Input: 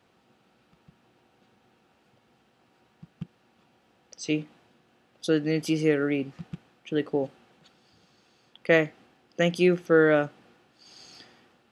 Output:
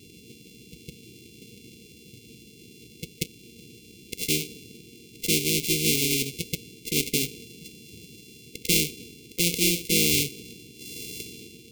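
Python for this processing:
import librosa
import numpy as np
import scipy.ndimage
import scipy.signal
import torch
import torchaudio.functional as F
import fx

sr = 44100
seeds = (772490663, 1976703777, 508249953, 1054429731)

y = np.r_[np.sort(x[:len(x) // 64 * 64].reshape(-1, 64), axis=1).ravel(), x[len(x) // 64 * 64:]]
y = fx.brickwall_bandstop(y, sr, low_hz=490.0, high_hz=2100.0)
y = fx.spectral_comp(y, sr, ratio=2.0)
y = F.gain(torch.from_numpy(y), 7.0).numpy()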